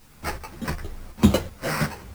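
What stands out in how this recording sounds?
aliases and images of a low sample rate 3,500 Hz, jitter 0%
tremolo saw up 2.7 Hz, depth 65%
a quantiser's noise floor 10 bits, dither triangular
a shimmering, thickened sound

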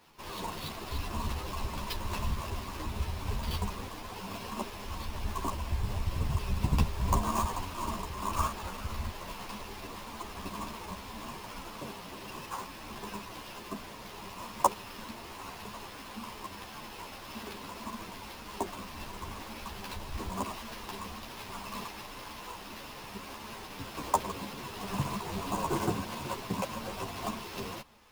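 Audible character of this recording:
aliases and images of a low sample rate 8,000 Hz, jitter 20%
a shimmering, thickened sound

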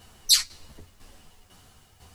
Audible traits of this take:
tremolo saw down 2 Hz, depth 70%
a quantiser's noise floor 12 bits, dither triangular
a shimmering, thickened sound

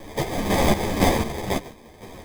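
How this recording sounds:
a quantiser's noise floor 8 bits, dither triangular
chopped level 2 Hz, depth 60%, duty 45%
aliases and images of a low sample rate 1,400 Hz, jitter 0%
a shimmering, thickened sound

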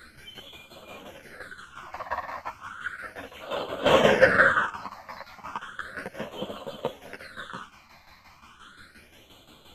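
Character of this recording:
phaser sweep stages 8, 0.34 Hz, lowest notch 420–1,700 Hz
tremolo saw down 5.7 Hz, depth 70%
a shimmering, thickened sound

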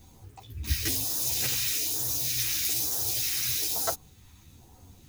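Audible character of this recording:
phaser sweep stages 2, 1.1 Hz, lowest notch 580–2,200 Hz
a quantiser's noise floor 10 bits, dither none
a shimmering, thickened sound

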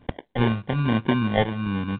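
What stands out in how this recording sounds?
phaser sweep stages 8, 1.2 Hz, lowest notch 280–1,000 Hz
aliases and images of a low sample rate 1,300 Hz, jitter 0%
mu-law

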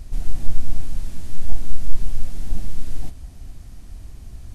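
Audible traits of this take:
background noise floor −39 dBFS
spectral slope −6.0 dB per octave

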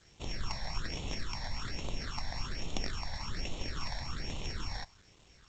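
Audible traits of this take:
a buzz of ramps at a fixed pitch in blocks of 8 samples
phaser sweep stages 8, 1.2 Hz, lowest notch 370–1,600 Hz
a quantiser's noise floor 10 bits, dither none
G.722

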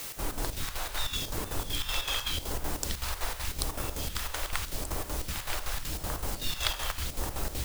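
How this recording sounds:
phaser sweep stages 2, 0.85 Hz, lowest notch 180–4,000 Hz
a quantiser's noise floor 6 bits, dither triangular
chopped level 5.3 Hz, depth 60%, duty 65%

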